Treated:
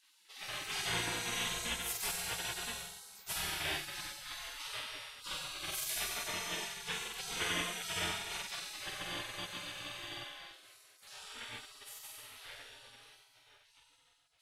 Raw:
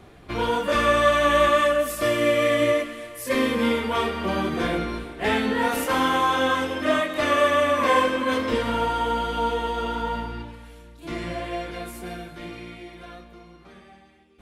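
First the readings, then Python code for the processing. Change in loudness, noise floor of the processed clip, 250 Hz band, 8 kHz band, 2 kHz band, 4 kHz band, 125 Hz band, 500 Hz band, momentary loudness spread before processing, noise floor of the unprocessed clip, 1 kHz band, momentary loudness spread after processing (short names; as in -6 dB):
-15.5 dB, -68 dBFS, -25.5 dB, -0.5 dB, -14.0 dB, -7.0 dB, -16.0 dB, -28.0 dB, 17 LU, -49 dBFS, -22.5 dB, 14 LU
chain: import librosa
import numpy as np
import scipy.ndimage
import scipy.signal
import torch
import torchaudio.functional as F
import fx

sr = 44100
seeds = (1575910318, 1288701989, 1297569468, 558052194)

y = fx.room_flutter(x, sr, wall_m=8.0, rt60_s=1.4)
y = fx.spec_gate(y, sr, threshold_db=-25, keep='weak')
y = y * 10.0 ** (-4.0 / 20.0)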